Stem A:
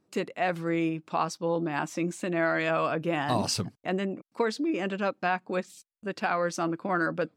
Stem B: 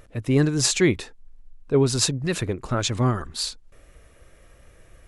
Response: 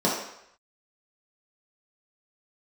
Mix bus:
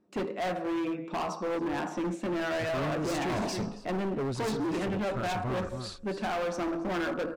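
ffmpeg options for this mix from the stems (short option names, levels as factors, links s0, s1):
-filter_complex "[0:a]volume=0.891,asplit=3[s0][s1][s2];[s1]volume=0.1[s3];[s2]volume=0.106[s4];[1:a]adelay=2450,volume=0.398,asplit=2[s5][s6];[s6]volume=0.282[s7];[2:a]atrim=start_sample=2205[s8];[s3][s8]afir=irnorm=-1:irlink=0[s9];[s4][s7]amix=inputs=2:normalize=0,aecho=0:1:276:1[s10];[s0][s5][s9][s10]amix=inputs=4:normalize=0,lowpass=f=2400:p=1,asoftclip=type=hard:threshold=0.0376"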